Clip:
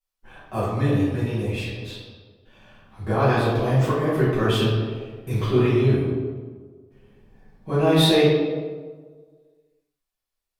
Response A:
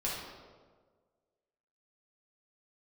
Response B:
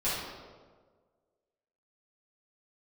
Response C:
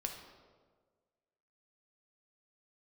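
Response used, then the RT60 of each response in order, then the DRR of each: B; 1.5, 1.5, 1.5 seconds; −6.5, −12.5, 2.5 decibels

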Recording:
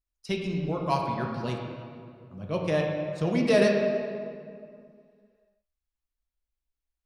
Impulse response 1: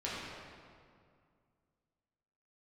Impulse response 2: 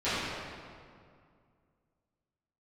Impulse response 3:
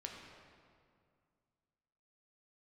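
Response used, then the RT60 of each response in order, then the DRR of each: 3; 2.2, 2.2, 2.2 seconds; −8.5, −17.0, 0.0 decibels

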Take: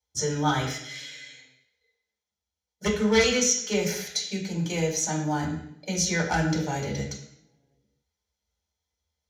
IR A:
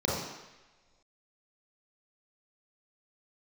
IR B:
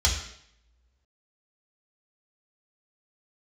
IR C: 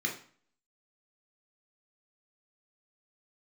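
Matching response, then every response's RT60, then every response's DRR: B; non-exponential decay, 0.70 s, 0.45 s; −5.5, −2.5, −0.5 decibels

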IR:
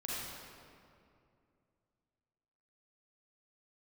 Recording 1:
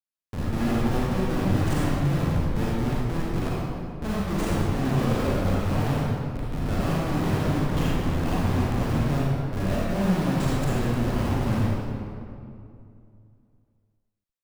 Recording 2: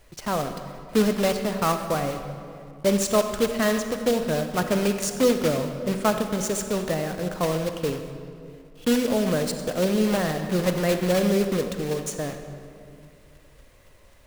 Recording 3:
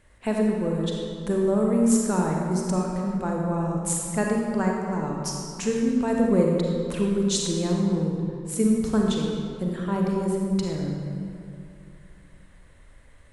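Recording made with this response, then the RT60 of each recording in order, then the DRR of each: 1; 2.5, 2.5, 2.5 seconds; −7.0, 6.5, −1.0 decibels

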